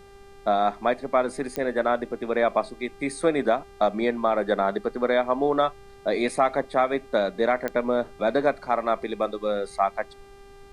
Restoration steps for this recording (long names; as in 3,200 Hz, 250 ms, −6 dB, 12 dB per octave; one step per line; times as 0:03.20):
click removal
hum removal 397.2 Hz, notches 32
downward expander −39 dBFS, range −21 dB